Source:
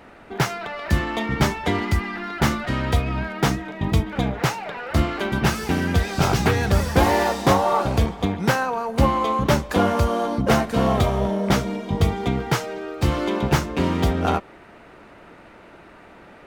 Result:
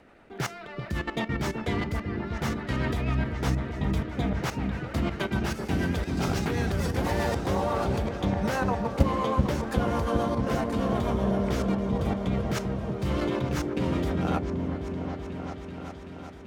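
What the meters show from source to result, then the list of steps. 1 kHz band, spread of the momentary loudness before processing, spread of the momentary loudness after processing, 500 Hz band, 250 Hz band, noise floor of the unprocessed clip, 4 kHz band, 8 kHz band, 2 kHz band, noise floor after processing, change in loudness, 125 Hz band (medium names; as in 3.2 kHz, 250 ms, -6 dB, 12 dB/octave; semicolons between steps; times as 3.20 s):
-9.0 dB, 6 LU, 8 LU, -6.0 dB, -4.5 dB, -47 dBFS, -9.0 dB, -9.5 dB, -8.5 dB, -42 dBFS, -6.5 dB, -5.5 dB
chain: rotary cabinet horn 8 Hz; level held to a coarse grid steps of 14 dB; delay with an opening low-pass 383 ms, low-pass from 400 Hz, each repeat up 1 oct, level -3 dB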